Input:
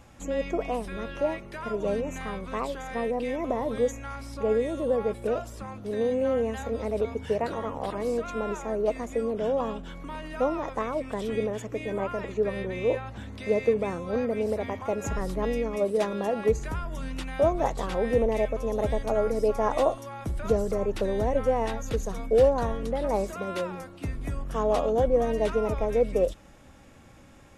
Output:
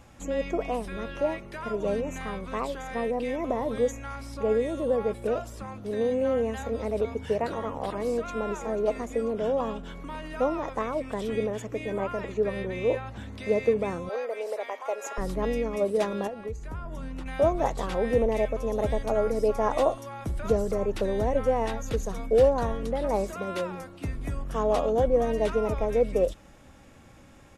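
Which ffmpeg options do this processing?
ffmpeg -i in.wav -filter_complex "[0:a]asplit=2[link_01][link_02];[link_02]afade=type=in:start_time=8.12:duration=0.01,afade=type=out:start_time=8.53:duration=0.01,aecho=0:1:490|980|1470|1960|2450|2940:0.211349|0.116242|0.063933|0.0351632|0.0193397|0.0106369[link_03];[link_01][link_03]amix=inputs=2:normalize=0,asettb=1/sr,asplit=3[link_04][link_05][link_06];[link_04]atrim=end=14.094[link_07];[link_05]atrim=start=14.09:end=15.18,asetpts=PTS-STARTPTS,afade=type=in:duration=0.004:curve=qsin,afade=type=out:start_time=1.086:duration=0.004:curve=qsin,highpass=frequency=480:width=0.5412,highpass=frequency=480:width=1.3066[link_08];[link_06]atrim=start=15.176[link_09];[link_07][link_08]acrossfade=duration=0.004:curve1=hsin:curve2=qsin[link_10];[link_10][link_09]acrossfade=duration=0.004:curve1=qsin:curve2=hsin,asettb=1/sr,asplit=3[link_11][link_12][link_13];[link_11]atrim=end=16.274[link_14];[link_12]atrim=start=16.27:end=17.26,asetpts=PTS-STARTPTS,afade=type=in:duration=0.004:curve=qsin,afade=type=out:start_time=0.986:duration=0.004:curve=qsin,acrossover=split=87|1400[link_15][link_16][link_17];[link_15]acompressor=threshold=-36dB:ratio=4[link_18];[link_16]acompressor=threshold=-36dB:ratio=4[link_19];[link_17]acompressor=threshold=-56dB:ratio=4[link_20];[link_18][link_19][link_20]amix=inputs=3:normalize=0[link_21];[link_13]atrim=start=17.256[link_22];[link_14][link_21]acrossfade=duration=0.004:curve1=hsin:curve2=qsin[link_23];[link_23][link_22]acrossfade=duration=0.004:curve1=qsin:curve2=hsin" out.wav

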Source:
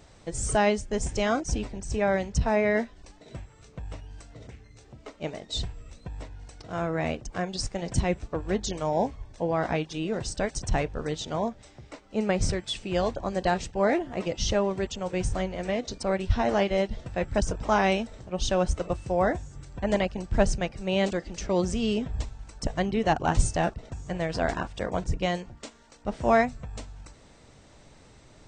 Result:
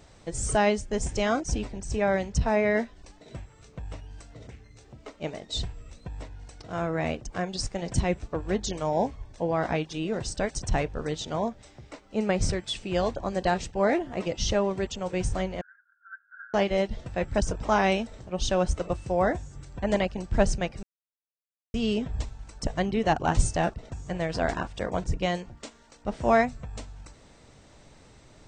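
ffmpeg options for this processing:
ffmpeg -i in.wav -filter_complex "[0:a]asettb=1/sr,asplit=3[link_01][link_02][link_03];[link_01]atrim=end=15.614[link_04];[link_02]atrim=start=15.61:end=16.54,asetpts=PTS-STARTPTS,afade=type=in:duration=0.004:curve=qsin,afade=type=out:start_time=0.926:duration=0.004:curve=qsin,asuperpass=centerf=1500:order=8:qfactor=5.7[link_05];[link_03]atrim=start=16.536[link_06];[link_04][link_05]acrossfade=duration=0.004:curve1=hsin:curve2=qsin[link_07];[link_07][link_06]acrossfade=duration=0.004:curve1=qsin:curve2=hsin,asplit=3[link_08][link_09][link_10];[link_08]atrim=end=20.83,asetpts=PTS-STARTPTS,afade=type=out:start_time=20.826:duration=0.004:curve=hsin[link_11];[link_09]atrim=start=20.83:end=21.74,asetpts=PTS-STARTPTS,volume=0[link_12];[link_10]atrim=start=21.74,asetpts=PTS-STARTPTS,afade=type=in:duration=0.004:curve=hsin[link_13];[link_11][link_12][link_13]concat=n=3:v=0:a=1" out.wav

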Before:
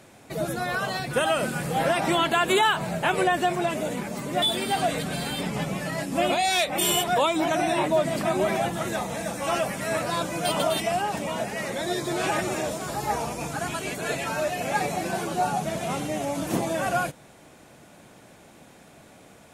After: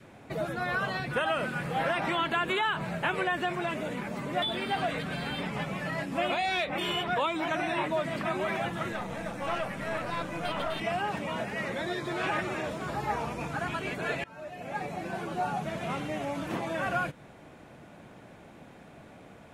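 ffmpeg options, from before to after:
ffmpeg -i in.wav -filter_complex "[0:a]asettb=1/sr,asplit=3[link_01][link_02][link_03];[link_01]atrim=end=8.924[link_04];[link_02]atrim=start=8.92:end=10.81,asetpts=PTS-STARTPTS,afade=type=in:duration=0.004:curve=qsin,afade=type=out:start_time=1.886:duration=0.004:curve=qsin,aeval=exprs='(tanh(11.2*val(0)+0.65)-tanh(0.65))/11.2':channel_layout=same[link_05];[link_03]atrim=start=10.806[link_06];[link_04][link_05]acrossfade=duration=0.004:curve1=hsin:curve2=qsin[link_07];[link_07][link_06]acrossfade=duration=0.004:curve1=qsin:curve2=hsin,asplit=2[link_08][link_09];[link_08]atrim=end=14.24,asetpts=PTS-STARTPTS,afade=type=out:start_time=14.236:duration=0.004:curve=hsin:silence=0.0668344[link_10];[link_09]atrim=start=14.24,asetpts=PTS-STARTPTS,afade=type=in:duration=1.73:silence=0.0668344[link_11];[link_10][link_11]concat=n=2:v=0:a=1,adynamicequalizer=threshold=0.0126:dfrequency=730:dqfactor=1.9:tfrequency=730:tqfactor=1.9:attack=5:release=100:ratio=0.375:range=3:mode=cutabove:tftype=bell,acrossover=split=640|4500[link_12][link_13][link_14];[link_12]acompressor=threshold=-36dB:ratio=4[link_15];[link_13]acompressor=threshold=-25dB:ratio=4[link_16];[link_14]acompressor=threshold=-44dB:ratio=4[link_17];[link_15][link_16][link_17]amix=inputs=3:normalize=0,bass=frequency=250:gain=2,treble=frequency=4000:gain=-13" out.wav

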